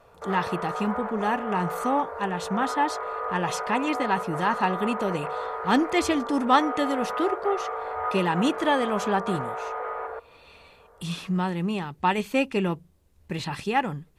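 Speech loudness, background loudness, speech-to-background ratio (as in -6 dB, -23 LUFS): -27.0 LUFS, -32.0 LUFS, 5.0 dB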